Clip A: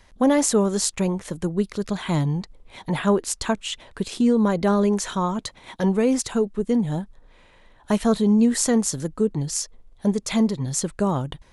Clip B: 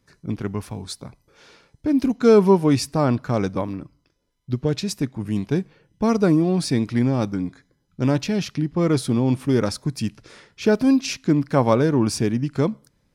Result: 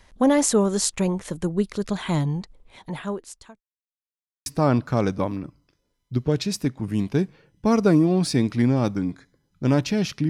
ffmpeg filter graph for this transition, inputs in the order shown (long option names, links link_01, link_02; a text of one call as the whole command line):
ffmpeg -i cue0.wav -i cue1.wav -filter_complex "[0:a]apad=whole_dur=10.29,atrim=end=10.29,asplit=2[link_01][link_02];[link_01]atrim=end=3.61,asetpts=PTS-STARTPTS,afade=type=out:start_time=2.03:duration=1.58[link_03];[link_02]atrim=start=3.61:end=4.46,asetpts=PTS-STARTPTS,volume=0[link_04];[1:a]atrim=start=2.83:end=8.66,asetpts=PTS-STARTPTS,afade=type=in:duration=0.004:curve=hsin[link_05];[link_03][link_04][link_05]concat=n=3:v=0:a=1" out.wav